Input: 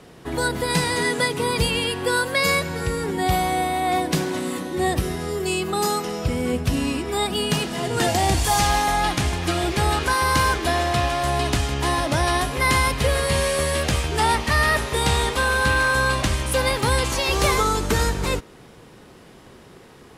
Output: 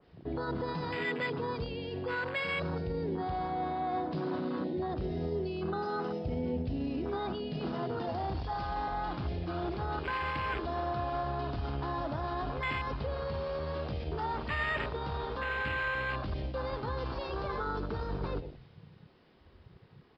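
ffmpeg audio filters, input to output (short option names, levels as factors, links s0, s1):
-filter_complex "[0:a]areverse,acompressor=threshold=0.0447:ratio=12,areverse,bandreject=f=60:t=h:w=6,bandreject=f=120:t=h:w=6,bandreject=f=180:t=h:w=6,bandreject=f=240:t=h:w=6,asplit=2[s0][s1];[s1]adelay=109,lowpass=f=2000:p=1,volume=0.188,asplit=2[s2][s3];[s3]adelay=109,lowpass=f=2000:p=1,volume=0.43,asplit=2[s4][s5];[s5]adelay=109,lowpass=f=2000:p=1,volume=0.43,asplit=2[s6][s7];[s7]adelay=109,lowpass=f=2000:p=1,volume=0.43[s8];[s2][s4][s6][s8]amix=inputs=4:normalize=0[s9];[s0][s9]amix=inputs=2:normalize=0,alimiter=level_in=1.12:limit=0.0631:level=0:latency=1:release=33,volume=0.891,aresample=11025,aresample=44100,afwtdn=0.02,adynamicequalizer=threshold=0.00282:dfrequency=2000:dqfactor=0.7:tfrequency=2000:tqfactor=0.7:attack=5:release=100:ratio=0.375:range=3.5:mode=boostabove:tftype=highshelf"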